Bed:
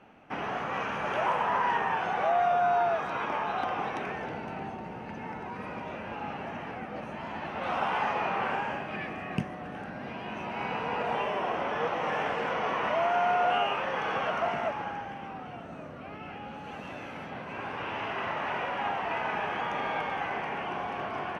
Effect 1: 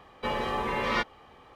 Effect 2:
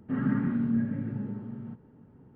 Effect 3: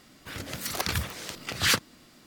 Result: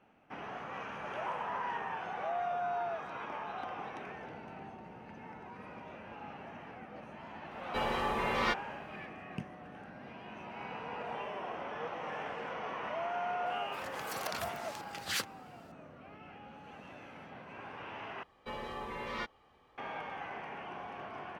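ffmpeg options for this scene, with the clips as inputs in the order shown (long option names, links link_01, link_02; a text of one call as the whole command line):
ffmpeg -i bed.wav -i cue0.wav -i cue1.wav -i cue2.wav -filter_complex "[1:a]asplit=2[link_01][link_02];[0:a]volume=-10dB[link_03];[link_01]highshelf=frequency=6400:gain=4[link_04];[3:a]highpass=frequency=250:poles=1[link_05];[link_03]asplit=2[link_06][link_07];[link_06]atrim=end=18.234[link_08];[link_02]atrim=end=1.55,asetpts=PTS-STARTPTS,volume=-11.5dB[link_09];[link_07]atrim=start=19.776[link_10];[link_04]atrim=end=1.55,asetpts=PTS-STARTPTS,volume=-4dB,afade=type=in:duration=0.004:curve=hsin,afade=type=out:start_time=1.546:duration=0.004:curve=hsin,adelay=7510[link_11];[link_05]atrim=end=2.26,asetpts=PTS-STARTPTS,volume=-11.5dB,afade=type=in:duration=0.004:curve=hsin,afade=type=out:start_time=2.256:duration=0.004:curve=hsin,adelay=13460[link_12];[link_08][link_09]acrossfade=duration=0.004:curve1=hsin:curve2=hsin[link_13];[link_13][link_10]acrossfade=duration=0.004:curve1=hsin:curve2=hsin[link_14];[link_14][link_11][link_12]amix=inputs=3:normalize=0" out.wav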